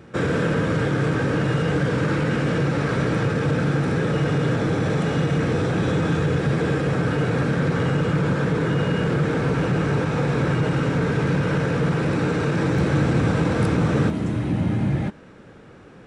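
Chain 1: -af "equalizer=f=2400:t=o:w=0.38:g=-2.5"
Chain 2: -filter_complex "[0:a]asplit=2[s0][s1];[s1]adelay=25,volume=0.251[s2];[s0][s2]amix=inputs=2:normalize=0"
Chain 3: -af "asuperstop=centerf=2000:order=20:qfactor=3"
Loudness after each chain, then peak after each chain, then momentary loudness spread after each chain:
-22.0 LUFS, -21.5 LUFS, -22.0 LUFS; -10.5 dBFS, -9.0 dBFS, -9.5 dBFS; 2 LU, 2 LU, 2 LU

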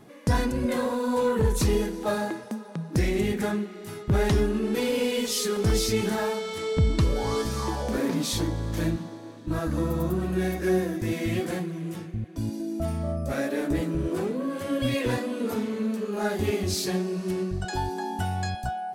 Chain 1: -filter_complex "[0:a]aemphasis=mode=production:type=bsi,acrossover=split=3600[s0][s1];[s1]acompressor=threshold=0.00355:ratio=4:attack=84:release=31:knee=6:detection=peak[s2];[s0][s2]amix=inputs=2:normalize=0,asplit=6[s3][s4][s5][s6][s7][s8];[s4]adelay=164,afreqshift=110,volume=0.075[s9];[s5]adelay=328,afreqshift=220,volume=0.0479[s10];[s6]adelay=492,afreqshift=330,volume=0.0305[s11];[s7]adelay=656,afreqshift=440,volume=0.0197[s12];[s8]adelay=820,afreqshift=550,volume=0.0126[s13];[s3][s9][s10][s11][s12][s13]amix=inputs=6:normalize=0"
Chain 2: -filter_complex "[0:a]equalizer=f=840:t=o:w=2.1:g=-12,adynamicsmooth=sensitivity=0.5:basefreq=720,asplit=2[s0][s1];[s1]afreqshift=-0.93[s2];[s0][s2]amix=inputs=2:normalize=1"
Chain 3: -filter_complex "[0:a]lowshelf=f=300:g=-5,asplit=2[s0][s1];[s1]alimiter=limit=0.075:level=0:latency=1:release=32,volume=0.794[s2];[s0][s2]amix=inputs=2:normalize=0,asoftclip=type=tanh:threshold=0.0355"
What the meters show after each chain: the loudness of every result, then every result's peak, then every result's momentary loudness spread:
-30.0 LUFS, -35.0 LUFS, -32.0 LUFS; -14.5 dBFS, -16.0 dBFS, -29.0 dBFS; 7 LU, 9 LU, 4 LU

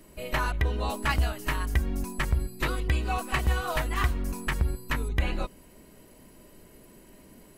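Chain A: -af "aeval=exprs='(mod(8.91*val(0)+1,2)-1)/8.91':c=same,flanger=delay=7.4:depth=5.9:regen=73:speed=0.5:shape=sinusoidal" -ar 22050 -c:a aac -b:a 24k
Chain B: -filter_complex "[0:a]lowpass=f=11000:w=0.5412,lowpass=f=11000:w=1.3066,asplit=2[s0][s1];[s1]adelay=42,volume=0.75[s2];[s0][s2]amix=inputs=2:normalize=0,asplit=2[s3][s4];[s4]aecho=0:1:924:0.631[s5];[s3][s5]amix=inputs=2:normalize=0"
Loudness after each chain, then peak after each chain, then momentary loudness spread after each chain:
-33.5 LUFS, -26.5 LUFS; -17.0 dBFS, -11.5 dBFS; 5 LU, 6 LU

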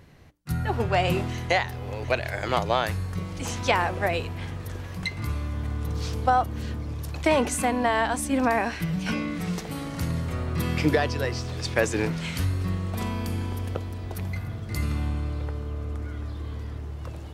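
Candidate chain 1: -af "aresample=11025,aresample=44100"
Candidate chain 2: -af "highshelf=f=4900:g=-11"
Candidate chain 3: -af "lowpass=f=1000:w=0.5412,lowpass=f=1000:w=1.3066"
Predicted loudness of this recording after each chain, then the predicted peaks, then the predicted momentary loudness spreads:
-28.0 LUFS, -28.0 LUFS, -29.0 LUFS; -7.5 dBFS, -8.0 dBFS, -9.0 dBFS; 11 LU, 10 LU, 10 LU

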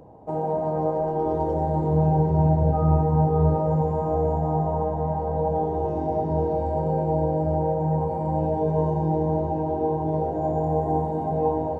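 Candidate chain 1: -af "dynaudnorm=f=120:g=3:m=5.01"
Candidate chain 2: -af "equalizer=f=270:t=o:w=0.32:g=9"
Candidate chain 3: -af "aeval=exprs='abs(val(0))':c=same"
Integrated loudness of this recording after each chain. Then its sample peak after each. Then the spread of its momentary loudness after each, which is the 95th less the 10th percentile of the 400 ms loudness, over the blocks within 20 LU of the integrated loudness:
-13.5 LUFS, -23.0 LUFS, -28.0 LUFS; -1.0 dBFS, -9.0 dBFS, -9.0 dBFS; 2 LU, 5 LU, 5 LU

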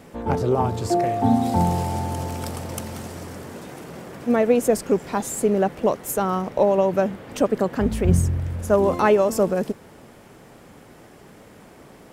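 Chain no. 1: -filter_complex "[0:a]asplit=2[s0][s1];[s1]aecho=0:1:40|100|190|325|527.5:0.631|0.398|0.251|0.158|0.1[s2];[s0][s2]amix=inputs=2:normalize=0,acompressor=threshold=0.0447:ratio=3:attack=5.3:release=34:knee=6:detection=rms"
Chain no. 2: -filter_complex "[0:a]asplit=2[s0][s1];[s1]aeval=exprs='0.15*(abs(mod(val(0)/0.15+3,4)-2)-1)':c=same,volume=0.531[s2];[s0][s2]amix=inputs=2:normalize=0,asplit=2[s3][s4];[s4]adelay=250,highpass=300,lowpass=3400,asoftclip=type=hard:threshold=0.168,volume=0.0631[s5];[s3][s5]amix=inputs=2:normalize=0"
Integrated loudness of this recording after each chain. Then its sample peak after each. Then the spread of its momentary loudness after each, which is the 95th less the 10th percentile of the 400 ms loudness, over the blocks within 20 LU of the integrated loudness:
-28.5 LUFS, -19.5 LUFS; -14.0 dBFS, -6.0 dBFS; 19 LU, 15 LU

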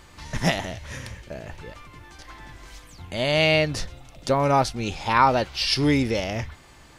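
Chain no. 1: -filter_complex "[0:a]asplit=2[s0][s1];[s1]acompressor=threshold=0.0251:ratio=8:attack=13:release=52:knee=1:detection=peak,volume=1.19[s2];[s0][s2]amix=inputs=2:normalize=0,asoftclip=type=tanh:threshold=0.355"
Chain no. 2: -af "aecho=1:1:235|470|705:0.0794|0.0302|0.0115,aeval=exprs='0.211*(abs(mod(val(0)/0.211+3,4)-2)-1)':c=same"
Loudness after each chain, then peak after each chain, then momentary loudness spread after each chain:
-22.0 LUFS, -23.5 LUFS; -9.5 dBFS, -13.5 dBFS; 18 LU, 18 LU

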